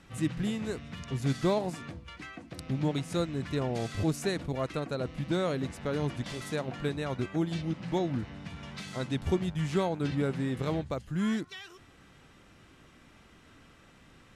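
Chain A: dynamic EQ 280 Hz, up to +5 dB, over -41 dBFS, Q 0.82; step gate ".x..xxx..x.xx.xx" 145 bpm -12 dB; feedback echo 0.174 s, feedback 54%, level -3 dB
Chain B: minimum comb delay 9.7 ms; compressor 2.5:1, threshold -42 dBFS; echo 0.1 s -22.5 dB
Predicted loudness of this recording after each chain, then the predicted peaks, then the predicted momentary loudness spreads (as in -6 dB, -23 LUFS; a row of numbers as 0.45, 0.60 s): -29.5, -42.5 LUFS; -10.5, -26.0 dBFS; 11, 18 LU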